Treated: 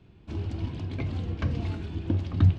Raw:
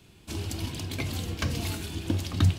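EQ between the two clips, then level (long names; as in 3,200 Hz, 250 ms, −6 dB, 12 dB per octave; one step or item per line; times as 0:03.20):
head-to-tape spacing loss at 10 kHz 33 dB
low-shelf EQ 180 Hz +3.5 dB
0.0 dB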